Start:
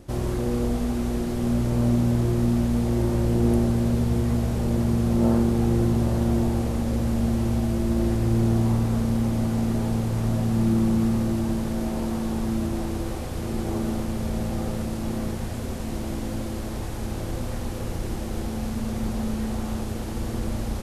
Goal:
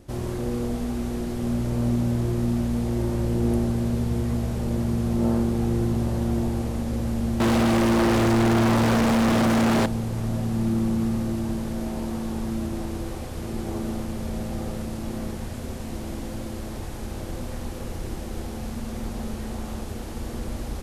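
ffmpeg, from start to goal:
-filter_complex "[0:a]bandreject=f=54.39:t=h:w=4,bandreject=f=108.78:t=h:w=4,bandreject=f=163.17:t=h:w=4,bandreject=f=217.56:t=h:w=4,bandreject=f=271.95:t=h:w=4,bandreject=f=326.34:t=h:w=4,bandreject=f=380.73:t=h:w=4,bandreject=f=435.12:t=h:w=4,bandreject=f=489.51:t=h:w=4,bandreject=f=543.9:t=h:w=4,bandreject=f=598.29:t=h:w=4,bandreject=f=652.68:t=h:w=4,bandreject=f=707.07:t=h:w=4,bandreject=f=761.46:t=h:w=4,bandreject=f=815.85:t=h:w=4,bandreject=f=870.24:t=h:w=4,bandreject=f=924.63:t=h:w=4,bandreject=f=979.02:t=h:w=4,bandreject=f=1.03341k:t=h:w=4,bandreject=f=1.0878k:t=h:w=4,bandreject=f=1.14219k:t=h:w=4,bandreject=f=1.19658k:t=h:w=4,bandreject=f=1.25097k:t=h:w=4,bandreject=f=1.30536k:t=h:w=4,bandreject=f=1.35975k:t=h:w=4,bandreject=f=1.41414k:t=h:w=4,bandreject=f=1.46853k:t=h:w=4,asettb=1/sr,asplit=3[a][b][c];[a]atrim=end=7.404[d];[b]atrim=start=7.4:end=9.86,asetpts=PTS-STARTPTS,afade=t=in:d=0.004:c=qsin,afade=t=out:st=2.456:d=0.004:c=qsin,asplit=2[e][f];[f]highpass=f=720:p=1,volume=38dB,asoftclip=type=tanh:threshold=-11dB[g];[e][g]amix=inputs=2:normalize=0,lowpass=f=2.4k:p=1,volume=-6dB[h];[c]atrim=start=9.856[i];[d][h]acrossfade=d=0.004:c1=hsin:c2=qsin[j];[j][i]acrossfade=d=0.004:c1=qsin:c2=hsin,volume=-2dB"

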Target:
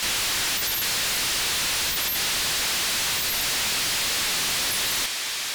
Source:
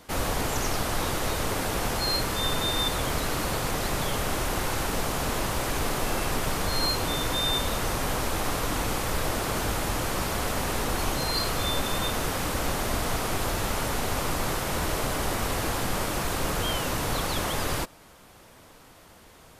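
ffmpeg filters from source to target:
-filter_complex "[0:a]lowpass=3.5k,tiltshelf=f=970:g=-4,asplit=2[a][b];[b]highpass=f=720:p=1,volume=34dB,asoftclip=type=tanh:threshold=-15.5dB[c];[a][c]amix=inputs=2:normalize=0,lowpass=f=1.9k:p=1,volume=-6dB,asoftclip=type=tanh:threshold=-27.5dB,asetrate=155673,aresample=44100,volume=4.5dB"

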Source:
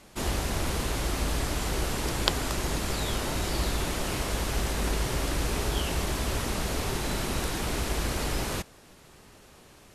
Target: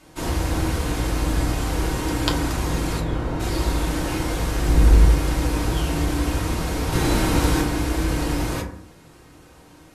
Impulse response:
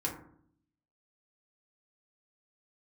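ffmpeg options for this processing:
-filter_complex "[0:a]asplit=3[a][b][c];[a]afade=t=out:st=2.99:d=0.02[d];[b]lowpass=f=1.2k:p=1,afade=t=in:st=2.99:d=0.02,afade=t=out:st=3.39:d=0.02[e];[c]afade=t=in:st=3.39:d=0.02[f];[d][e][f]amix=inputs=3:normalize=0,asettb=1/sr,asplit=3[g][h][i];[g]atrim=end=4.664[j];[h]atrim=start=4.66:end=5.07,asetpts=PTS-STARTPTS,afade=t=in:d=0.004:c=qsin,afade=t=out:st=0.406:d=0.004:c=qsin,lowshelf=f=180:g=11.5[k];[i]atrim=start=5.066[l];[j][k]acrossfade=d=0.004:c1=hsin:c2=qsin[m];[m][l]acrossfade=d=0.004:c1=qsin:c2=hsin,asettb=1/sr,asplit=3[n][o][p];[n]atrim=end=6.924[q];[o]atrim=start=6.92:end=7.62,asetpts=PTS-STARTPTS,afade=t=in:d=0.004:c=qsin,afade=t=out:st=0.696:d=0.004:c=qsin,acontrast=26[r];[p]atrim=start=7.616[s];[q][r]acrossfade=d=0.004:c1=hsin:c2=qsin[t];[t][s]acrossfade=d=0.004:c1=qsin:c2=hsin[u];[1:a]atrim=start_sample=2205,afade=t=out:st=0.35:d=0.01,atrim=end_sample=15876[v];[u][v]afir=irnorm=-1:irlink=0"

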